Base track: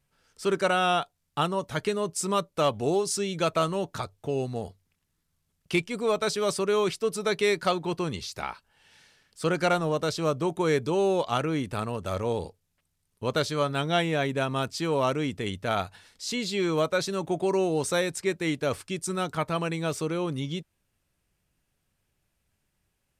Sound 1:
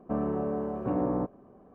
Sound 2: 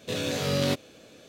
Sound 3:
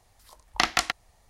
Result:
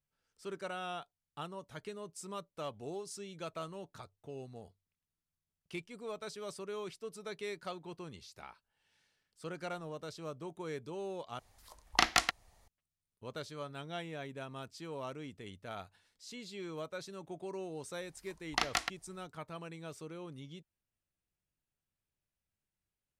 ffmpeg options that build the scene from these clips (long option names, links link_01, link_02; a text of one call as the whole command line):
ffmpeg -i bed.wav -i cue0.wav -i cue1.wav -i cue2.wav -filter_complex "[3:a]asplit=2[link_01][link_02];[0:a]volume=-17dB,asplit=2[link_03][link_04];[link_03]atrim=end=11.394[link_05];[link_01]atrim=end=1.29,asetpts=PTS-STARTPTS,volume=-4dB[link_06];[link_04]atrim=start=12.676[link_07];[link_02]atrim=end=1.29,asetpts=PTS-STARTPTS,volume=-9dB,afade=type=in:duration=0.004:curve=hsin,afade=type=out:start_time=1.286:duration=0.004:curve=hsin,adelay=17980[link_08];[link_05][link_06]acrossfade=duration=0.004:curve1=hsin:curve2=hsin[link_09];[link_09][link_07]acrossfade=duration=0.004:curve1=hsin:curve2=hsin[link_10];[link_10][link_08]amix=inputs=2:normalize=0" out.wav